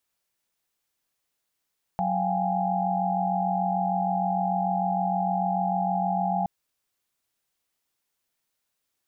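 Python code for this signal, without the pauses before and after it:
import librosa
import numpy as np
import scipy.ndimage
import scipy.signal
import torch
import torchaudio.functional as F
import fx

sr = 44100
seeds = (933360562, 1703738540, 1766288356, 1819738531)

y = fx.chord(sr, length_s=4.47, notes=(54, 77, 79, 80), wave='sine', level_db=-28.5)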